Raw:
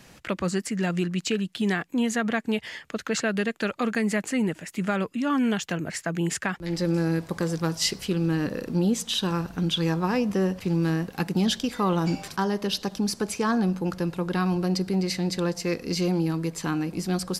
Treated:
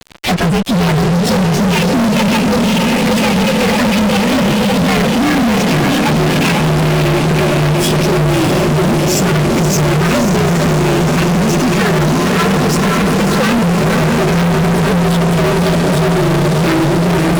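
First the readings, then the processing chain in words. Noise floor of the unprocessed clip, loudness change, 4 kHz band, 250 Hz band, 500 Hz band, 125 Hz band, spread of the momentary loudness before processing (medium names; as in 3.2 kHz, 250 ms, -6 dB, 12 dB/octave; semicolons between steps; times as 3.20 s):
-52 dBFS, +14.5 dB, +13.0 dB, +13.0 dB, +14.5 dB, +16.5 dB, 4 LU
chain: frequency axis rescaled in octaves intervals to 124%; treble shelf 9.6 kHz -7 dB; compression 6:1, threshold -28 dBFS, peak gain reduction 8 dB; distance through air 93 m; echo that smears into a reverb 561 ms, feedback 73%, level -5 dB; fuzz box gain 45 dB, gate -50 dBFS; trim +2.5 dB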